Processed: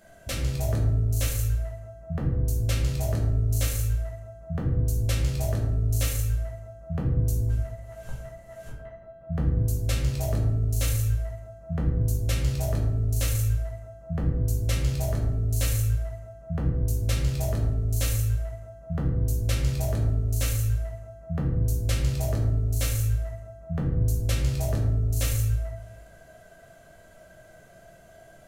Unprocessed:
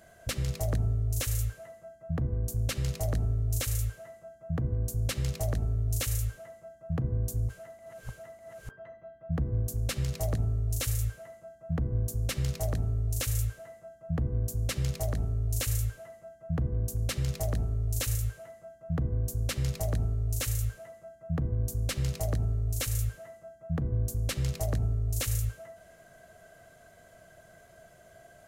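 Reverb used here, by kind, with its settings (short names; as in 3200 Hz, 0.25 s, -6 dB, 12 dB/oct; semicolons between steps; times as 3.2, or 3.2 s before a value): shoebox room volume 120 m³, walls mixed, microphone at 1.2 m; gain -1.5 dB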